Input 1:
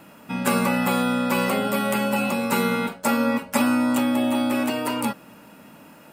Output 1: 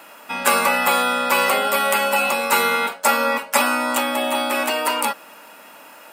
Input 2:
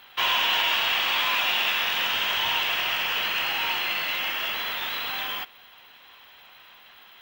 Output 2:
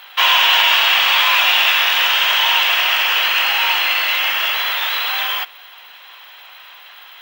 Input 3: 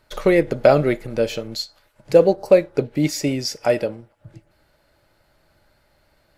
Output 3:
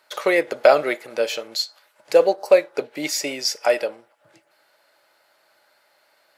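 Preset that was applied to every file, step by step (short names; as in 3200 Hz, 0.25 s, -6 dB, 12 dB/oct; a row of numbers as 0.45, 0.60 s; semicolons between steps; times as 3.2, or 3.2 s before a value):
HPF 630 Hz 12 dB/oct; normalise peaks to -1.5 dBFS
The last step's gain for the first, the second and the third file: +8.0, +10.5, +3.5 dB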